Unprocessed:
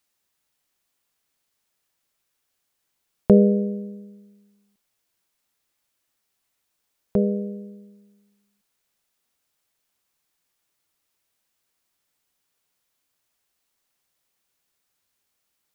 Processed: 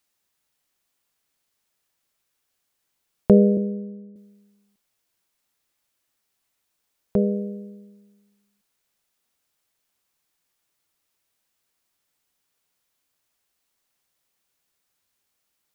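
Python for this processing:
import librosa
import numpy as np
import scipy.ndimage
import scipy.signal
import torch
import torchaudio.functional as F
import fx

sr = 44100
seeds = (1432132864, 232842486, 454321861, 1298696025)

y = fx.ellip_lowpass(x, sr, hz=590.0, order=4, stop_db=40, at=(3.57, 4.16))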